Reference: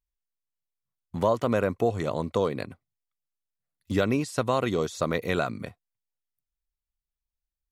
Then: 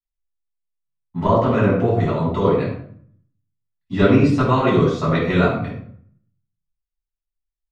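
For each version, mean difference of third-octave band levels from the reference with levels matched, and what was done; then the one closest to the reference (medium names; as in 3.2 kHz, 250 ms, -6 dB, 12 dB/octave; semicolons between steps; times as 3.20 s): 8.0 dB: low-pass 4 kHz 12 dB/octave; band-passed feedback delay 100 ms, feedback 45%, band-pass 1.4 kHz, level -18 dB; simulated room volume 960 m³, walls furnished, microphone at 9.9 m; three bands expanded up and down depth 40%; trim -3 dB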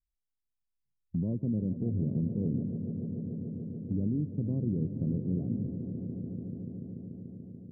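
16.0 dB: inverse Chebyshev low-pass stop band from 1.8 kHz, stop band 80 dB; dynamic bell 160 Hz, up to +6 dB, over -45 dBFS, Q 1.5; peak limiter -23 dBFS, peak gain reduction 8 dB; on a send: echo with a slow build-up 145 ms, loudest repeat 5, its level -13 dB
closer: first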